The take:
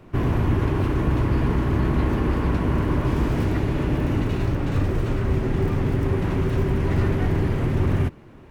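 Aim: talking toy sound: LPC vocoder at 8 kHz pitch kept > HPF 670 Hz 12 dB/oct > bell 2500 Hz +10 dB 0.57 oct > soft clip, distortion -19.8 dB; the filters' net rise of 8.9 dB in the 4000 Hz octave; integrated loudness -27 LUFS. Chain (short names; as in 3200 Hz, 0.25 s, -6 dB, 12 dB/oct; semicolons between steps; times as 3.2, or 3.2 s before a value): bell 4000 Hz +6.5 dB; LPC vocoder at 8 kHz pitch kept; HPF 670 Hz 12 dB/oct; bell 2500 Hz +10 dB 0.57 oct; soft clip -21.5 dBFS; gain +4.5 dB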